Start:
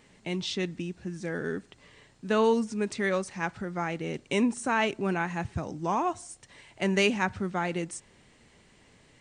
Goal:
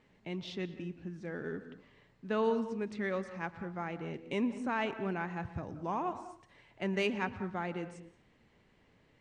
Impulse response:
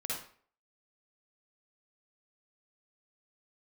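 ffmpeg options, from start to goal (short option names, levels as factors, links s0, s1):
-filter_complex "[0:a]adynamicsmooth=sensitivity=0.5:basefreq=3800,asplit=2[s0][s1];[1:a]atrim=start_sample=2205,highshelf=f=3400:g=-8.5,adelay=117[s2];[s1][s2]afir=irnorm=-1:irlink=0,volume=0.224[s3];[s0][s3]amix=inputs=2:normalize=0,volume=0.447"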